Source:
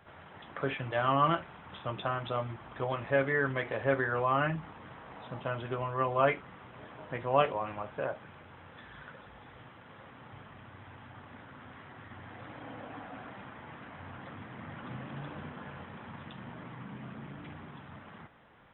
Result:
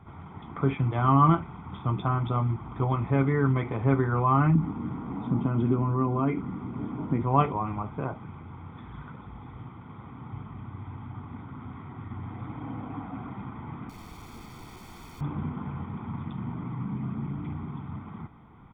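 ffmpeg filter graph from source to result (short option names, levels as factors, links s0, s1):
-filter_complex "[0:a]asettb=1/sr,asplit=3[s0][s1][s2];[s0]atrim=end=4.554[s3];[s1]atrim=start=4.55:end=7.22,asetpts=PTS-STARTPTS,afade=t=in:d=0.004:c=qsin,afade=t=out:st=2.666:d=0.004:c=qsin,acompressor=threshold=0.0126:ratio=2:attack=3.2:release=140:knee=1:detection=peak,aeval=exprs='val(0)+0.000891*sin(2*PI*1400*n/s)':c=same,equalizer=f=260:t=o:w=1.3:g=12[s4];[s2]atrim=start=7.216[s5];[s3][s4]acrossfade=d=0.004:c1=hsin:c2=qsin[s6];[s6][s5]acrossfade=d=0.004:c1=qsin:c2=hsin,asettb=1/sr,asplit=3[s7][s8][s9];[s7]atrim=end=13.894[s10];[s8]atrim=start=13.89:end=15.21,asetpts=PTS-STARTPTS,afade=t=in:d=0.004:c=qsin,afade=t=out:st=1.316:d=0.004:c=qsin,highshelf=f=2200:g=7,aeval=exprs='(mod(150*val(0)+1,2)-1)/150':c=same[s11];[s9]atrim=start=15.206[s12];[s10][s11]acrossfade=d=0.004:c1=hsin:c2=qsin[s13];[s13][s12]acrossfade=d=0.004:c1=qsin:c2=hsin,tiltshelf=f=1200:g=9.5,aecho=1:1:0.9:0.79"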